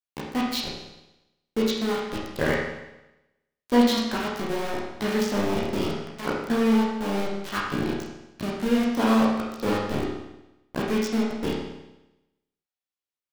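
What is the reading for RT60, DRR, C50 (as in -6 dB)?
0.95 s, -5.0 dB, 2.0 dB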